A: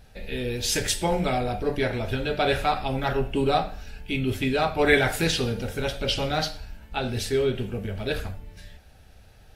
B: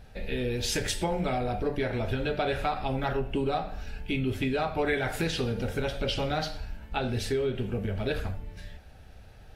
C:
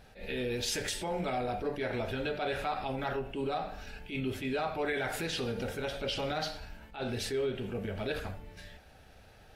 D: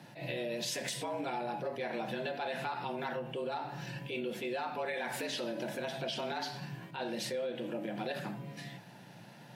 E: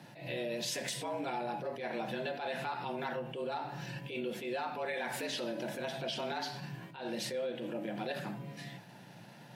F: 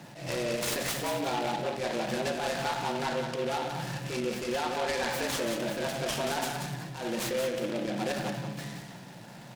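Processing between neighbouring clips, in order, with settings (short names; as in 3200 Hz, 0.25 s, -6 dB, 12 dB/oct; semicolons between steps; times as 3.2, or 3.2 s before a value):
high shelf 3800 Hz -7.5 dB; compressor 4:1, threshold -28 dBFS, peak gain reduction 11.5 dB; gain +2 dB
limiter -23 dBFS, peak gain reduction 7 dB; low shelf 160 Hz -10.5 dB; attack slew limiter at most 170 dB/s
compressor 2.5:1, threshold -40 dBFS, peak gain reduction 8 dB; frequency shift +110 Hz; gain +3 dB
attack slew limiter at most 100 dB/s
on a send: feedback echo 0.18 s, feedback 29%, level -6 dB; on the sum: noise-modulated delay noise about 2200 Hz, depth 0.064 ms; gain +5.5 dB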